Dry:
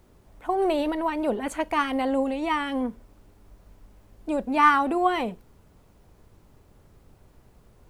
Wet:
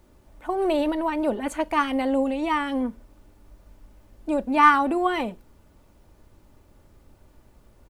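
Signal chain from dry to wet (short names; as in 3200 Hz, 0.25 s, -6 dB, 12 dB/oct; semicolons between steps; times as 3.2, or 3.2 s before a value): comb 3.4 ms, depth 33%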